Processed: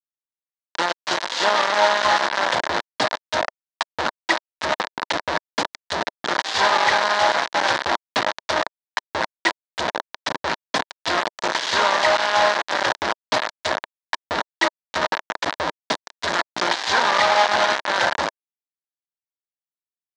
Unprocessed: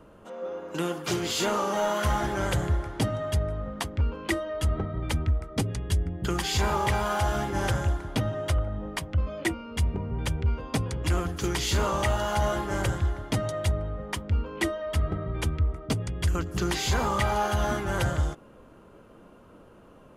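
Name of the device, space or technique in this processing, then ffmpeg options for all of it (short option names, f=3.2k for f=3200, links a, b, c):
hand-held game console: -af "acrusher=bits=3:mix=0:aa=0.000001,highpass=410,equalizer=f=410:t=q:w=4:g=-5,equalizer=f=630:t=q:w=4:g=4,equalizer=f=950:t=q:w=4:g=7,equalizer=f=1.7k:t=q:w=4:g=6,equalizer=f=2.6k:t=q:w=4:g=-3,equalizer=f=3.9k:t=q:w=4:g=4,lowpass=f=5.6k:w=0.5412,lowpass=f=5.6k:w=1.3066,volume=5.5dB"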